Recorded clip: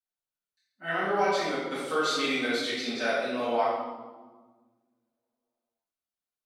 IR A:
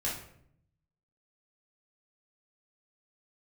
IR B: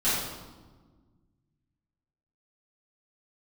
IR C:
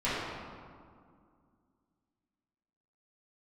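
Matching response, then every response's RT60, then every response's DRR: B; 0.65, 1.4, 2.2 seconds; −6.5, −14.0, −13.0 decibels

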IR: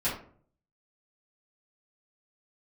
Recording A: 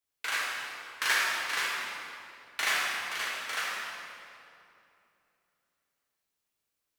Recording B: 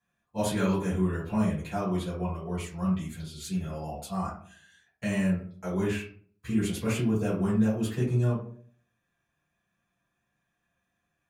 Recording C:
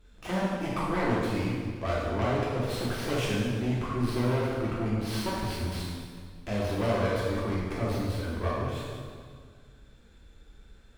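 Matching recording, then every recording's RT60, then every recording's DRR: B; 2.7, 0.50, 1.9 seconds; −7.0, −12.0, −7.0 decibels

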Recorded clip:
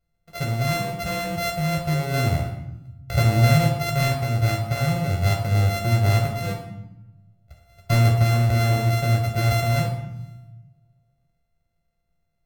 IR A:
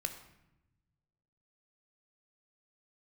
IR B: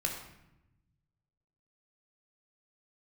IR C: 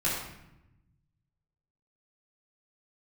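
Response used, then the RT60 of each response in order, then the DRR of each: B; 0.90, 0.90, 0.90 seconds; 6.0, 0.5, −9.0 decibels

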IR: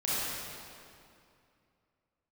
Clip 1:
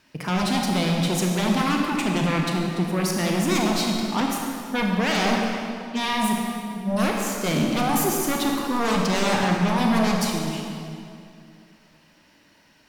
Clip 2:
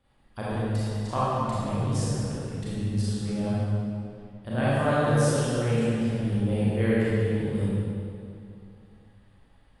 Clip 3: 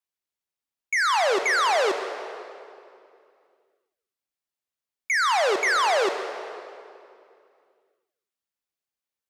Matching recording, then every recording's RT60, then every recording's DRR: 2; 2.5, 2.5, 2.5 seconds; 0.0, −10.0, 6.5 decibels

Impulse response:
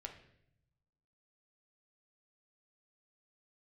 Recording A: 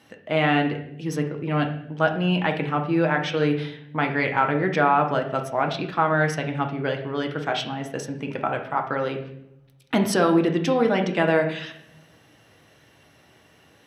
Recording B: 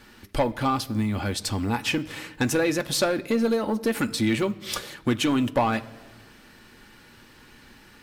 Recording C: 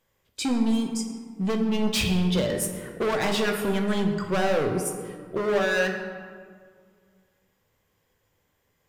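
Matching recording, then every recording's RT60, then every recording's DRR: A; 0.75 s, non-exponential decay, 2.0 s; 2.5, 7.5, 3.0 decibels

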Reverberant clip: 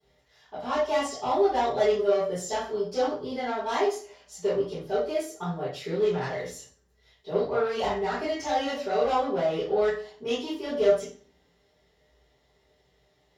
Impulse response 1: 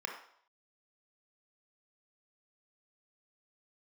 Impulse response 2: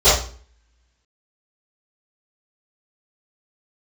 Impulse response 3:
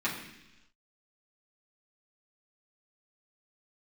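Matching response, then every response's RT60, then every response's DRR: 2; 0.65, 0.40, 0.95 seconds; 1.5, −18.5, −7.5 decibels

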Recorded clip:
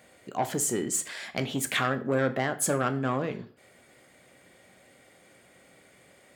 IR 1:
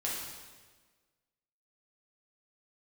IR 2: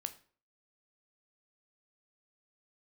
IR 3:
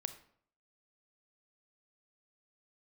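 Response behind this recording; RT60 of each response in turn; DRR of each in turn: 2; 1.4, 0.45, 0.60 seconds; −5.5, 9.0, 10.0 decibels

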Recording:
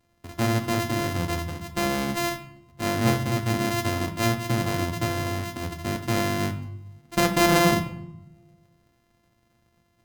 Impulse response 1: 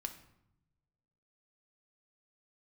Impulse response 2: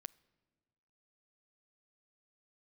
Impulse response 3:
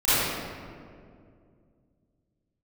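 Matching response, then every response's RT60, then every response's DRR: 1; 0.80, 1.5, 2.3 seconds; 5.0, 18.5, −17.0 decibels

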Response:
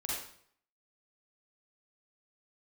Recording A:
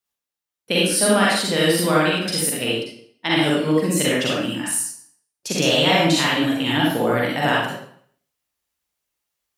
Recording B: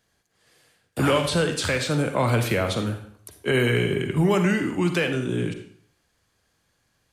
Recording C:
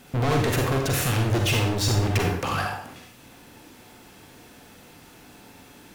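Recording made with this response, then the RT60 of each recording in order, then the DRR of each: A; 0.60, 0.60, 0.60 seconds; −6.0, 6.5, 1.5 decibels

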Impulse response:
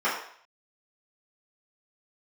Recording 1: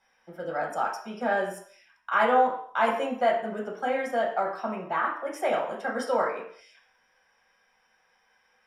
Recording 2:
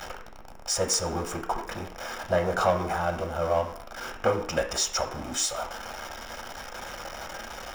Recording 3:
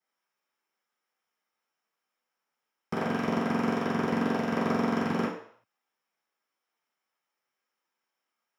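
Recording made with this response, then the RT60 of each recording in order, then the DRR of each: 3; 0.60, 0.60, 0.60 seconds; −3.5, 4.0, −12.0 decibels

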